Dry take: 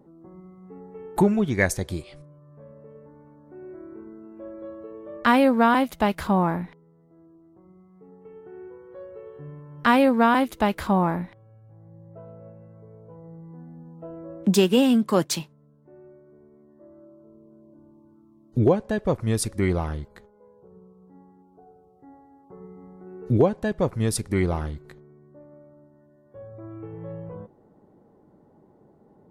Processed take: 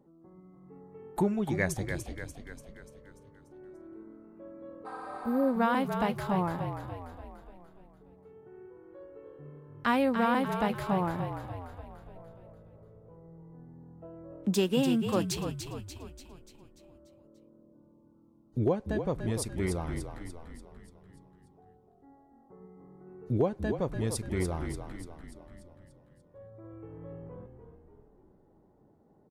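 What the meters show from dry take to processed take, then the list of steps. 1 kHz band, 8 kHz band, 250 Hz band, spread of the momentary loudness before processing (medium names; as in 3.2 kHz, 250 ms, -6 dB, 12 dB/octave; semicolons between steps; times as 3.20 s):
-8.0 dB, -7.5 dB, -8.0 dB, 23 LU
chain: spectral replace 4.88–5.46 s, 610–11000 Hz after; frequency-shifting echo 292 ms, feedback 54%, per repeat -42 Hz, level -7.5 dB; trim -8.5 dB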